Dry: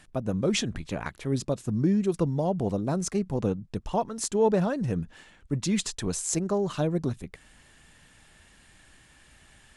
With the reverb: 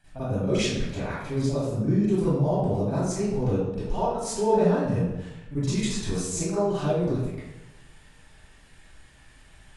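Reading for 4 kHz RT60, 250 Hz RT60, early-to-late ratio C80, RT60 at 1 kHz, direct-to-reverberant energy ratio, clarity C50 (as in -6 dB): 0.70 s, 1.0 s, -0.5 dB, 0.95 s, -14.0 dB, -6.0 dB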